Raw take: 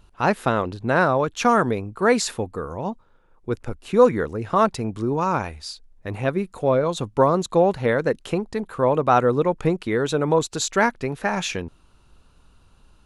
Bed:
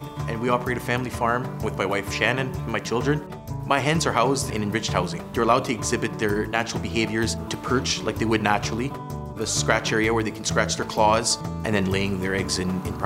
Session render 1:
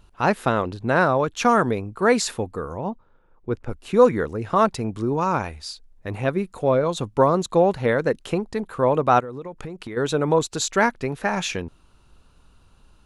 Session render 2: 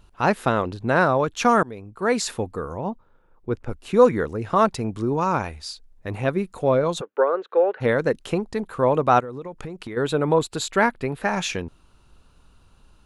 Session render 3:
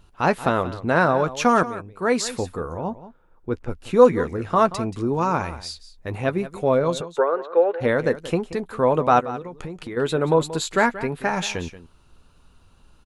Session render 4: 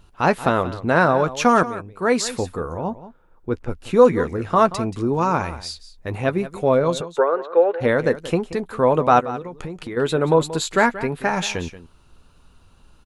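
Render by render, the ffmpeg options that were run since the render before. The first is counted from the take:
-filter_complex "[0:a]asettb=1/sr,asplit=3[a][b][c];[a]atrim=end=2.784[d];[b]atrim=start=2.78:end=3.69,asetpts=PTS-STARTPTS,afade=t=in:d=0.004:c=qsin,afade=t=out:st=0.906:d=0.004:c=qsin,aemphasis=mode=reproduction:type=75kf[e];[c]atrim=start=3.686[f];[d][e]acrossfade=d=0.004:c1=hsin:c2=qsin[g];[g][f]acrossfade=d=0.004:c1=qsin:c2=hsin,asplit=3[h][i][j];[h]afade=t=out:st=9.19:d=0.02[k];[i]acompressor=threshold=-30dB:ratio=8:attack=3.2:release=140:knee=1:detection=peak,afade=t=in:st=9.19:d=0.02,afade=t=out:st=9.96:d=0.02[l];[j]afade=t=in:st=9.96:d=0.02[m];[k][l][m]amix=inputs=3:normalize=0"
-filter_complex "[0:a]asplit=3[a][b][c];[a]afade=t=out:st=7:d=0.02[d];[b]highpass=f=440:w=0.5412,highpass=f=440:w=1.3066,equalizer=f=450:t=q:w=4:g=6,equalizer=f=690:t=q:w=4:g=-7,equalizer=f=1k:t=q:w=4:g=-9,equalizer=f=1.5k:t=q:w=4:g=7,equalizer=f=2.2k:t=q:w=4:g=-4,lowpass=f=2.5k:w=0.5412,lowpass=f=2.5k:w=1.3066,afade=t=in:st=7:d=0.02,afade=t=out:st=7.8:d=0.02[e];[c]afade=t=in:st=7.8:d=0.02[f];[d][e][f]amix=inputs=3:normalize=0,asettb=1/sr,asplit=3[g][h][i];[g]atrim=end=9.934[j];[h]atrim=start=9.93:end=11.22,asetpts=PTS-STARTPTS,afade=t=in:d=0.004:c=qsin,afade=t=out:st=1.286:d=0.004:c=qsin,equalizer=f=6k:t=o:w=0.41:g=-11[k];[i]atrim=start=11.216[l];[j][k]acrossfade=d=0.004:c1=hsin:c2=qsin[m];[m][l]acrossfade=d=0.004:c1=qsin:c2=hsin,asplit=2[n][o];[n]atrim=end=1.63,asetpts=PTS-STARTPTS,afade=t=out:st=1.626:d=0.004:c=hsin:silence=0.125893[p];[o]atrim=start=1.63,asetpts=PTS-STARTPTS,afade=t=in:d=0.76:silence=0.125893[q];[p][q]concat=n=2:v=0:a=1"
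-filter_complex "[0:a]asplit=2[a][b];[b]adelay=12,volume=-11.5dB[c];[a][c]amix=inputs=2:normalize=0,aecho=1:1:180:0.178"
-af "volume=2dB,alimiter=limit=-2dB:level=0:latency=1"

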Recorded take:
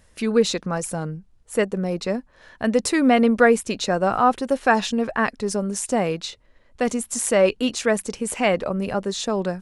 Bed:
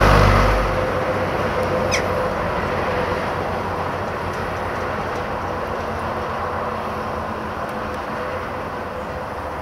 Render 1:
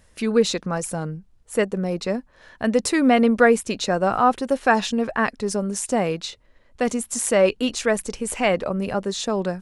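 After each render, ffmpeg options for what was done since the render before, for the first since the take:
-filter_complex "[0:a]asplit=3[a][b][c];[a]afade=t=out:st=7.64:d=0.02[d];[b]asubboost=boost=3:cutoff=65,afade=t=in:st=7.64:d=0.02,afade=t=out:st=8.49:d=0.02[e];[c]afade=t=in:st=8.49:d=0.02[f];[d][e][f]amix=inputs=3:normalize=0"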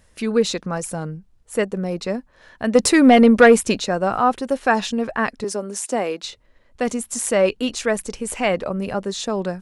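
-filter_complex "[0:a]asettb=1/sr,asplit=3[a][b][c];[a]atrim=end=2.754[d];[b]atrim=start=2.75:end=3.8,asetpts=PTS-STARTPTS,afade=t=in:d=0.004:c=qsin,afade=t=out:st=1.046:d=0.004:c=qsin,acontrast=70[e];[c]atrim=start=3.796[f];[d][e]acrossfade=d=0.004:c1=hsin:c2=qsin[g];[g][f]acrossfade=d=0.004:c1=qsin:c2=hsin,asettb=1/sr,asplit=3[h][i][j];[h]atrim=end=5.444[k];[i]atrim=start=5.44:end=6.23,asetpts=PTS-STARTPTS,afade=t=in:d=0.004:c=qsin,afade=t=out:st=0.786:d=0.004:c=qsin,highpass=f=240:w=0.5412,highpass=f=240:w=1.3066[l];[j]atrim=start=6.226[m];[k][l]acrossfade=d=0.004:c1=hsin:c2=qsin[n];[n][m]acrossfade=d=0.004:c1=qsin:c2=hsin"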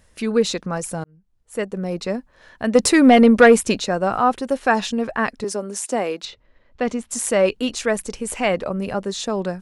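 -filter_complex "[0:a]asettb=1/sr,asplit=3[a][b][c];[a]atrim=end=6.254[d];[b]atrim=start=6.25:end=7.11,asetpts=PTS-STARTPTS,afade=t=in:d=0.004:c=qsin,afade=t=out:st=0.856:d=0.004:c=qsin,lowpass=4.3k[e];[c]atrim=start=7.106[f];[d][e]acrossfade=d=0.004:c1=hsin:c2=qsin[g];[g][f]acrossfade=d=0.004:c1=qsin:c2=hsin,asplit=2[h][i];[h]atrim=end=1.04,asetpts=PTS-STARTPTS,afade=t=out:st=1.036:d=0.004:c=hsin[j];[i]atrim=start=1.04,asetpts=PTS-STARTPTS,afade=t=in:d=0.91[k];[j][k]concat=n=2:v=0:a=1"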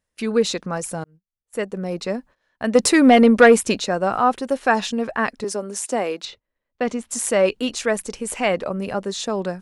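-af "agate=range=-21dB:threshold=-42dB:ratio=16:detection=peak,lowshelf=f=110:g=-7"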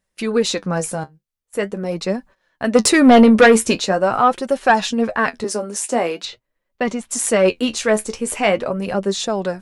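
-af "flanger=delay=5.1:depth=8.9:regen=46:speed=0.44:shape=sinusoidal,aeval=exprs='0.631*sin(PI/2*1.58*val(0)/0.631)':c=same"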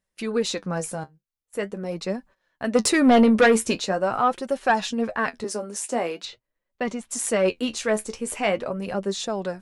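-af "volume=-6.5dB"

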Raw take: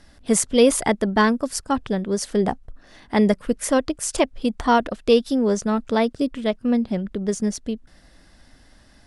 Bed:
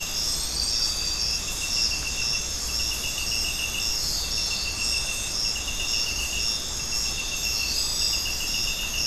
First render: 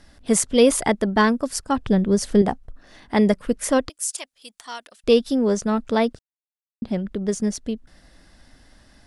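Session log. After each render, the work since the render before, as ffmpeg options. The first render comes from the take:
-filter_complex "[0:a]asettb=1/sr,asplit=3[a][b][c];[a]atrim=end=1.864[d];[b]atrim=start=1.86:end=2.42,asetpts=PTS-STARTPTS,afade=t=in:d=0.004:c=qsin,afade=t=out:st=0.556:d=0.004:c=qsin,lowshelf=f=240:g=11[e];[c]atrim=start=2.416[f];[d][e]acrossfade=d=0.004:c1=hsin:c2=qsin[g];[g][f]acrossfade=d=0.004:c1=qsin:c2=hsin,asettb=1/sr,asplit=3[h][i][j];[h]atrim=end=3.894[k];[i]atrim=start=3.89:end=5.04,asetpts=PTS-STARTPTS,afade=t=in:d=0.004:c=qsin,afade=t=out:st=1.146:d=0.004:c=qsin,aderivative[l];[j]atrim=start=5.036[m];[k][l]acrossfade=d=0.004:c1=hsin:c2=qsin[n];[n][m]acrossfade=d=0.004:c1=qsin:c2=hsin,asplit=3[o][p][q];[o]atrim=end=6.19,asetpts=PTS-STARTPTS,afade=t=out:st=6.186:d=0.004:c=hsin[r];[p]atrim=start=6.19:end=6.82,asetpts=PTS-STARTPTS,volume=0[s];[q]atrim=start=6.82,asetpts=PTS-STARTPTS,afade=t=in:d=0.004:c=hsin[t];[r][s][t]concat=n=3:v=0:a=1"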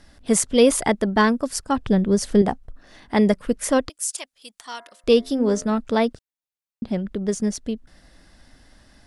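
-filter_complex "[0:a]asplit=3[a][b][c];[a]afade=t=out:st=4.71:d=0.02[d];[b]bandreject=f=87.29:t=h:w=4,bandreject=f=174.58:t=h:w=4,bandreject=f=261.87:t=h:w=4,bandreject=f=349.16:t=h:w=4,bandreject=f=436.45:t=h:w=4,bandreject=f=523.74:t=h:w=4,bandreject=f=611.03:t=h:w=4,bandreject=f=698.32:t=h:w=4,bandreject=f=785.61:t=h:w=4,bandreject=f=872.9:t=h:w=4,bandreject=f=960.19:t=h:w=4,bandreject=f=1.04748k:t=h:w=4,bandreject=f=1.13477k:t=h:w=4,bandreject=f=1.22206k:t=h:w=4,bandreject=f=1.30935k:t=h:w=4,bandreject=f=1.39664k:t=h:w=4,bandreject=f=1.48393k:t=h:w=4,bandreject=f=1.57122k:t=h:w=4,bandreject=f=1.65851k:t=h:w=4,bandreject=f=1.7458k:t=h:w=4,bandreject=f=1.83309k:t=h:w=4,bandreject=f=1.92038k:t=h:w=4,bandreject=f=2.00767k:t=h:w=4,bandreject=f=2.09496k:t=h:w=4,bandreject=f=2.18225k:t=h:w=4,afade=t=in:st=4.71:d=0.02,afade=t=out:st=5.76:d=0.02[e];[c]afade=t=in:st=5.76:d=0.02[f];[d][e][f]amix=inputs=3:normalize=0"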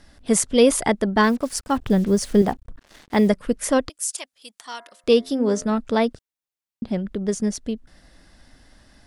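-filter_complex "[0:a]asettb=1/sr,asplit=3[a][b][c];[a]atrim=end=1.234[d];[b]atrim=start=1.23:end=3.29,asetpts=PTS-STARTPTS,afade=t=in:d=0.004:c=qsin,afade=t=out:st=2.056:d=0.004:c=qsin,acrusher=bits=6:mix=0:aa=0.5[e];[c]atrim=start=3.286[f];[d][e]acrossfade=d=0.004:c1=hsin:c2=qsin[g];[g][f]acrossfade=d=0.004:c1=qsin:c2=hsin,asettb=1/sr,asplit=3[h][i][j];[h]atrim=end=4.144[k];[i]atrim=start=4.14:end=5.6,asetpts=PTS-STARTPTS,afade=t=in:d=0.004:c=qsin,afade=t=out:st=1.456:d=0.004:c=qsin,highpass=f=100:p=1[l];[j]atrim=start=5.596[m];[k][l]acrossfade=d=0.004:c1=hsin:c2=qsin[n];[n][m]acrossfade=d=0.004:c1=qsin:c2=hsin"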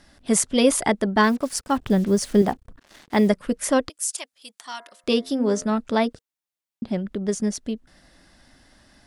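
-af "lowshelf=f=76:g=-8.5,bandreject=f=470:w=12"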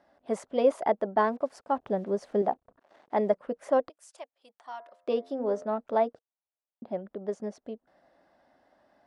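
-af "bandpass=f=660:t=q:w=1.9:csg=0"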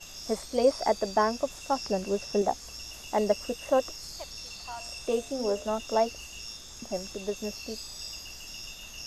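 -filter_complex "[1:a]volume=-15.5dB[a];[0:a][a]amix=inputs=2:normalize=0"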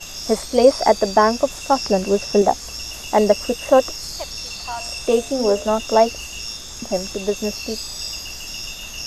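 -af "volume=11dB,alimiter=limit=-2dB:level=0:latency=1"

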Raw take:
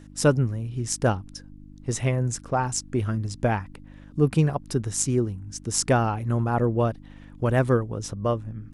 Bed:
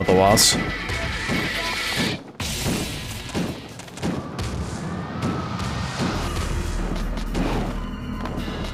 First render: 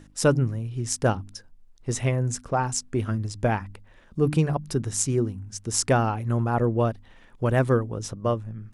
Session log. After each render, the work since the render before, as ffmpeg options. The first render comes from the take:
-af "bandreject=f=50:t=h:w=4,bandreject=f=100:t=h:w=4,bandreject=f=150:t=h:w=4,bandreject=f=200:t=h:w=4,bandreject=f=250:t=h:w=4,bandreject=f=300:t=h:w=4"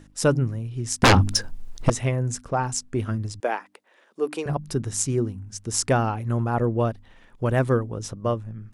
-filter_complex "[0:a]asettb=1/sr,asplit=3[a][b][c];[a]atrim=end=1.034[d];[b]atrim=start=1.03:end=1.9,asetpts=PTS-STARTPTS,afade=t=in:d=0.004:c=qsin,afade=t=out:st=0.866:d=0.004:c=qsin,aeval=exprs='0.316*sin(PI/2*5.62*val(0)/0.316)':c=same[e];[c]atrim=start=1.896[f];[d][e]acrossfade=d=0.004:c1=hsin:c2=qsin[g];[g][f]acrossfade=d=0.004:c1=qsin:c2=hsin,asettb=1/sr,asplit=3[h][i][j];[h]atrim=end=3.404[k];[i]atrim=start=3.4:end=4.46,asetpts=PTS-STARTPTS,afade=t=in:d=0.004:c=qsin,afade=t=out:st=1.056:d=0.004:c=qsin,highpass=f=350:w=0.5412,highpass=f=350:w=1.3066[l];[j]atrim=start=4.456[m];[k][l]acrossfade=d=0.004:c1=hsin:c2=qsin[n];[n][m]acrossfade=d=0.004:c1=qsin:c2=hsin"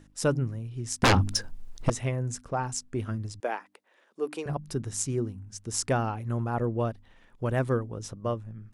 -af "volume=-5.5dB"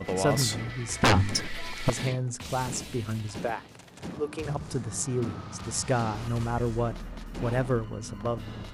-filter_complex "[1:a]volume=-13dB[a];[0:a][a]amix=inputs=2:normalize=0"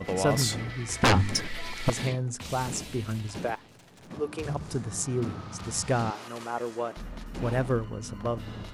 -filter_complex "[0:a]asettb=1/sr,asplit=3[a][b][c];[a]atrim=end=3.554[d];[b]atrim=start=3.55:end=4.11,asetpts=PTS-STARTPTS,afade=t=in:d=0.004:c=qsin,afade=t=out:st=0.556:d=0.004:c=qsin,aeval=exprs='(tanh(282*val(0)+0.45)-tanh(0.45))/282':c=same[e];[c]atrim=start=4.106[f];[d][e]acrossfade=d=0.004:c1=hsin:c2=qsin[g];[g][f]acrossfade=d=0.004:c1=qsin:c2=hsin,asettb=1/sr,asplit=3[h][i][j];[h]atrim=end=6.104[k];[i]atrim=start=6.1:end=6.97,asetpts=PTS-STARTPTS,afade=t=in:d=0.004:c=qsin,afade=t=out:st=0.866:d=0.004:c=qsin,highpass=400[l];[j]atrim=start=6.966[m];[k][l]acrossfade=d=0.004:c1=hsin:c2=qsin[n];[n][m]acrossfade=d=0.004:c1=qsin:c2=hsin"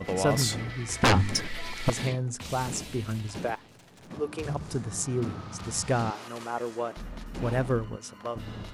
-filter_complex "[0:a]asettb=1/sr,asplit=3[a][b][c];[a]atrim=end=7.964[d];[b]atrim=start=7.96:end=8.36,asetpts=PTS-STARTPTS,afade=t=in:d=0.004:c=qsin,afade=t=out:st=0.396:d=0.004:c=qsin,highpass=f=680:p=1[e];[c]atrim=start=8.356[f];[d][e]acrossfade=d=0.004:c1=hsin:c2=qsin[g];[g][f]acrossfade=d=0.004:c1=qsin:c2=hsin"

